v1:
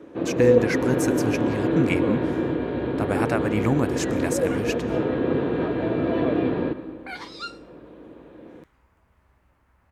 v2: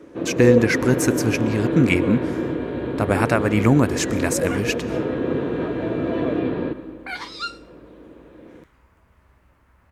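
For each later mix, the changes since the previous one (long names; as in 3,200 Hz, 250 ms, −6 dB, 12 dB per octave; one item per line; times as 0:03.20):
speech +6.5 dB
second sound +5.5 dB
master: add parametric band 790 Hz −3.5 dB 0.31 octaves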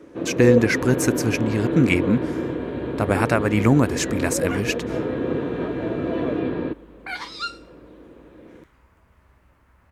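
reverb: off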